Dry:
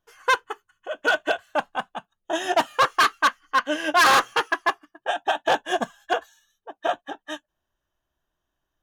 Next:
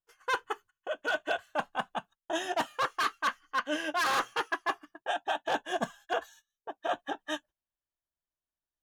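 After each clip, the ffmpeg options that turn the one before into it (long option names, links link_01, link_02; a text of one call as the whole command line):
ffmpeg -i in.wav -af "agate=range=-20dB:threshold=-50dB:ratio=16:detection=peak,areverse,acompressor=threshold=-28dB:ratio=6,areverse" out.wav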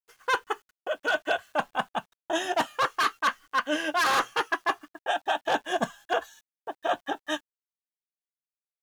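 ffmpeg -i in.wav -af "acrusher=bits=10:mix=0:aa=0.000001,volume=4.5dB" out.wav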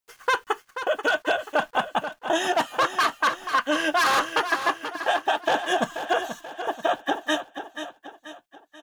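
ffmpeg -i in.wav -filter_complex "[0:a]acompressor=threshold=-28dB:ratio=6,asplit=2[link_01][link_02];[link_02]aecho=0:1:484|968|1452|1936|2420:0.316|0.142|0.064|0.0288|0.013[link_03];[link_01][link_03]amix=inputs=2:normalize=0,volume=8.5dB" out.wav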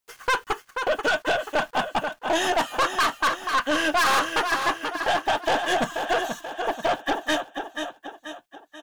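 ffmpeg -i in.wav -af "aeval=exprs='(tanh(12.6*val(0)+0.2)-tanh(0.2))/12.6':channel_layout=same,volume=4.5dB" out.wav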